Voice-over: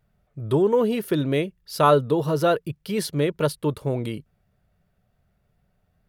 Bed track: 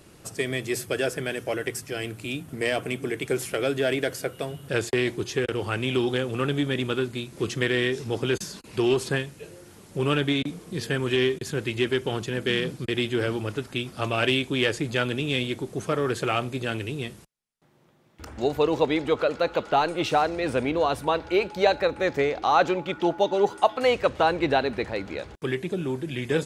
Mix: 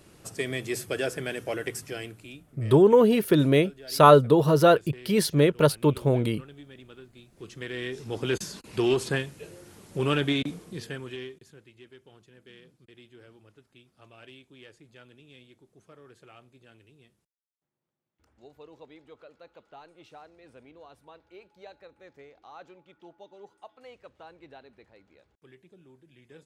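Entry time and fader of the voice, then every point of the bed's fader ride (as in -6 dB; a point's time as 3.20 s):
2.20 s, +2.5 dB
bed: 1.90 s -3 dB
2.66 s -22 dB
7.04 s -22 dB
8.36 s -1.5 dB
10.53 s -1.5 dB
11.71 s -27 dB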